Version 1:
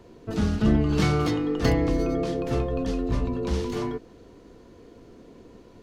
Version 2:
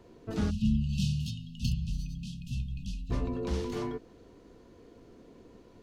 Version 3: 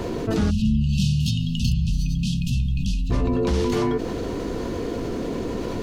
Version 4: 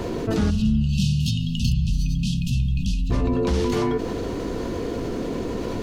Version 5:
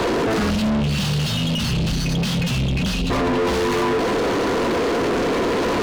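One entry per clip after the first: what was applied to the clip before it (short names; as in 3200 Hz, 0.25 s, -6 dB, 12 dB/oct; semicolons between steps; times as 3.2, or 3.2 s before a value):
spectral delete 0.5–3.11, 250–2500 Hz; gain -5.5 dB
fast leveller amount 70%; gain +5.5 dB
spring tank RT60 1.4 s, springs 38/46 ms, chirp 50 ms, DRR 17 dB
overdrive pedal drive 41 dB, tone 2200 Hz, clips at -8 dBFS; gain -5 dB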